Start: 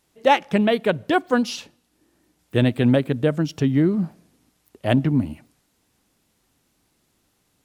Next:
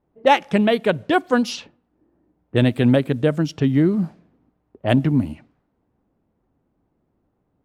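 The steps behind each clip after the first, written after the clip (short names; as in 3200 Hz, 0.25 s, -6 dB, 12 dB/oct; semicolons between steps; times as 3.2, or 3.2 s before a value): low-pass opened by the level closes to 800 Hz, open at -18 dBFS; gain +1.5 dB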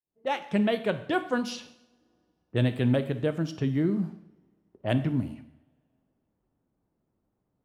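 opening faded in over 0.59 s; two-slope reverb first 0.69 s, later 2.5 s, from -27 dB, DRR 9 dB; gain -9 dB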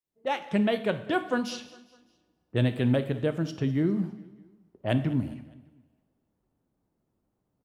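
feedback echo 0.203 s, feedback 47%, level -20.5 dB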